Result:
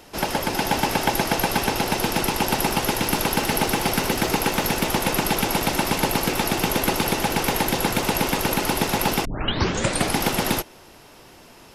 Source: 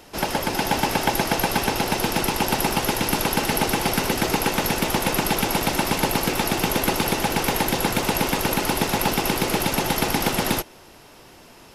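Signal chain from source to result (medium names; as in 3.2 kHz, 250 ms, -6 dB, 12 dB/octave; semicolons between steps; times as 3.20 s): 2.99–4.85 s: added noise pink -47 dBFS; 9.25 s: tape start 0.92 s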